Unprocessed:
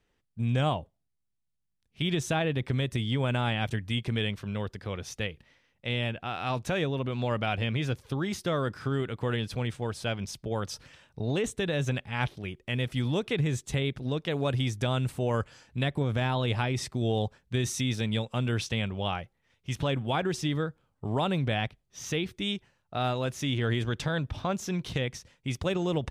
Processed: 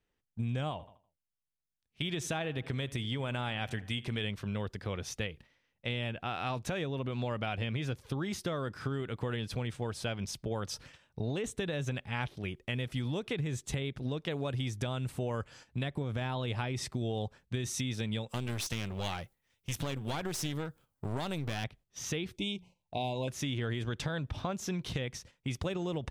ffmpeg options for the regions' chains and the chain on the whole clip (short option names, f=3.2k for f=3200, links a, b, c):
-filter_complex "[0:a]asettb=1/sr,asplit=3[a][b][c];[a]atrim=end=0.714[d];[b]atrim=start=0.71:end=4.24,asetpts=PTS-STARTPTS,afade=t=in:d=0.004:c=qsin,afade=t=out:st=3.526:d=0.004:c=qsin,lowshelf=f=470:g=-4.5,asplit=2[e][f];[f]adelay=81,lowpass=f=3.8k:p=1,volume=-19.5dB,asplit=2[g][h];[h]adelay=81,lowpass=f=3.8k:p=1,volume=0.51,asplit=2[i][j];[j]adelay=81,lowpass=f=3.8k:p=1,volume=0.51,asplit=2[k][l];[l]adelay=81,lowpass=f=3.8k:p=1,volume=0.51[m];[e][g][i][k][m]amix=inputs=5:normalize=0,atrim=end_sample=155673[n];[c]atrim=start=4.236[o];[d][n]acrossfade=d=0.004:c1=hsin:c2=qsin[p];[p][o]acrossfade=d=0.004:c1=qsin:c2=hsin,asettb=1/sr,asplit=3[q][r][s];[q]atrim=end=18.294[t];[r]atrim=start=18.29:end=21.64,asetpts=PTS-STARTPTS,afade=t=in:d=0.004:c=qsin,afade=t=out:st=3.346:d=0.004:c=qsin,aemphasis=mode=production:type=50fm,aeval=exprs='clip(val(0),-1,0.0188)':c=same[u];[s]atrim=start=21.636[v];[t][u]acrossfade=d=0.004:c1=hsin:c2=qsin[w];[w][v]acrossfade=d=0.004:c1=qsin:c2=hsin,asettb=1/sr,asplit=3[x][y][z];[x]atrim=end=22.364[aa];[y]atrim=start=22.36:end=23.28,asetpts=PTS-STARTPTS,afade=t=in:d=0.004:c=qsin,afade=t=out:st=0.916:d=0.004:c=qsin,asuperstop=centerf=1500:order=20:qfactor=1.4,bandreject=f=60:t=h:w=6,bandreject=f=120:t=h:w=6,bandreject=f=180:t=h:w=6[ab];[z]atrim=start=23.276[ac];[aa][ab]acrossfade=d=0.004:c1=hsin:c2=qsin[ad];[ad][ac]acrossfade=d=0.004:c1=qsin:c2=hsin,agate=range=-8dB:threshold=-52dB:ratio=16:detection=peak,acompressor=threshold=-31dB:ratio=6"